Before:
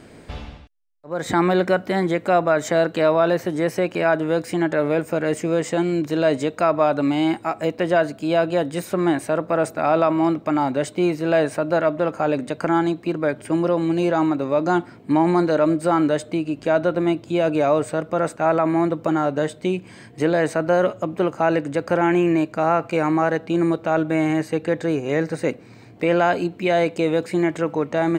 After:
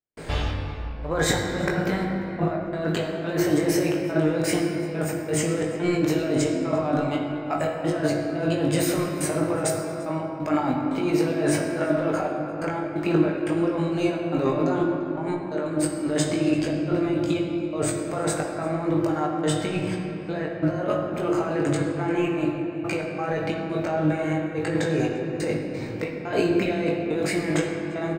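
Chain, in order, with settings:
parametric band 250 Hz −2.5 dB 0.77 octaves
mains-hum notches 50/100/150/200/250/300/350 Hz
compressor whose output falls as the input rises −28 dBFS, ratio −1
gate pattern ".xx.xxxx.xxx..x" 88 BPM −60 dB
double-tracking delay 20 ms −4.5 dB
on a send: single-tap delay 345 ms −23 dB
on the sum: rectangular room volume 190 cubic metres, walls hard, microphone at 0.44 metres

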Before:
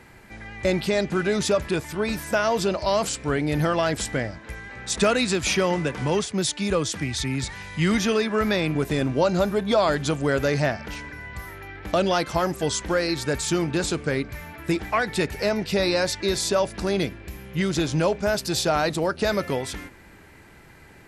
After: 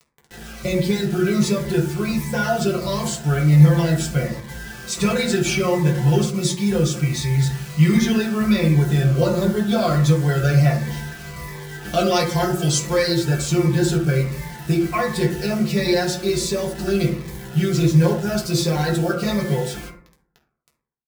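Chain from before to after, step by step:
0:11.83–0:13.19: high-shelf EQ 2,300 Hz +6.5 dB
comb filter 5.7 ms, depth 88%
dynamic equaliser 950 Hz, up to −4 dB, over −35 dBFS, Q 2.1
bit reduction 6 bits
convolution reverb RT60 0.65 s, pre-delay 3 ms, DRR −3 dB
phaser whose notches keep moving one way falling 1.4 Hz
level −3.5 dB

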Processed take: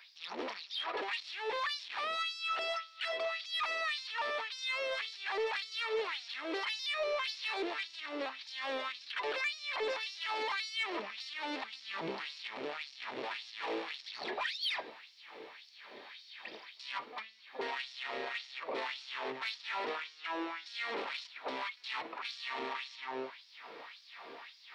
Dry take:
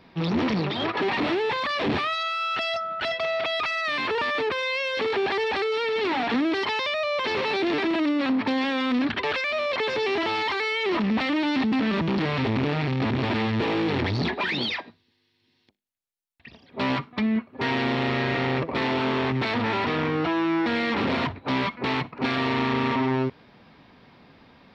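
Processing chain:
high-shelf EQ 4,300 Hz +7.5 dB
in parallel at −1 dB: downward compressor, threshold −35 dBFS, peak gain reduction 14 dB
on the sum: brickwall limiter −22.5 dBFS, peak gain reduction 11 dB
on a send: feedback delay with all-pass diffusion 1,732 ms, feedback 59%, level −14.5 dB
on the sum: auto-filter high-pass sine 1.8 Hz 430–5,400 Hz
0:11.74–0:12.42: low-shelf EQ 190 Hz +12 dB
soft clipping −16.5 dBFS, distortion −25 dB
level −8.5 dB

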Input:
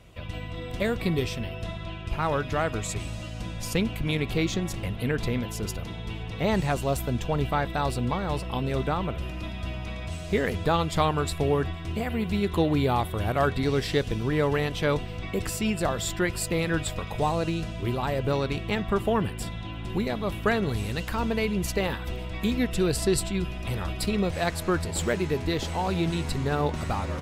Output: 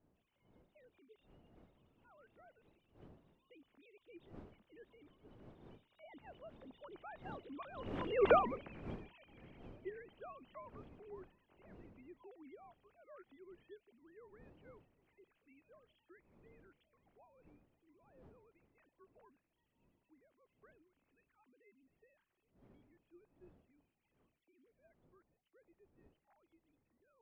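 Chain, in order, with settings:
three sine waves on the formant tracks
wind on the microphone 350 Hz −30 dBFS
source passing by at 0:08.30, 22 m/s, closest 1.1 metres
level +3 dB

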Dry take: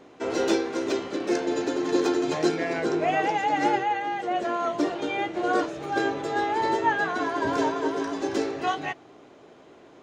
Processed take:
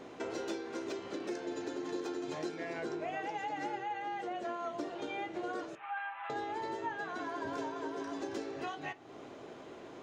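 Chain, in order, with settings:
0:05.75–0:06.30: elliptic band-pass filter 850–2,800 Hz, stop band 40 dB
downward compressor 4 to 1, threshold −41 dBFS, peak gain reduction 19 dB
on a send: convolution reverb RT60 0.35 s, pre-delay 5 ms, DRR 13 dB
on the sum: level +1.5 dB

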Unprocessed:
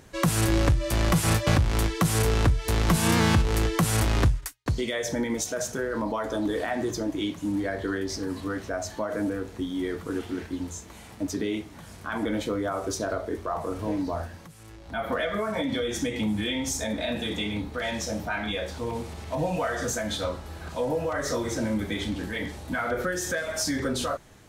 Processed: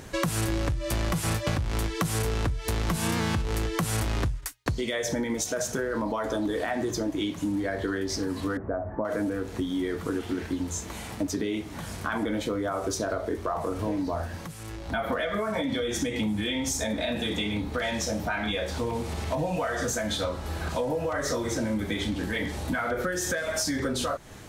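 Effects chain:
0:08.57–0:09.05: Bessel low-pass filter 920 Hz, order 8
downward compressor 4 to 1, threshold −35 dBFS, peak gain reduction 15.5 dB
level +8 dB

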